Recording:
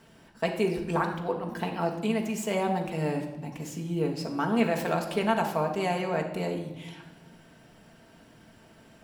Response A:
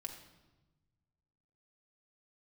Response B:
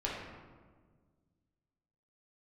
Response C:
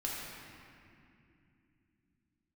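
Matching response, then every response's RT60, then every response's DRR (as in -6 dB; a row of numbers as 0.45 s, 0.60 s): A; 1.1 s, 1.6 s, 2.7 s; 1.5 dB, -5.5 dB, -5.0 dB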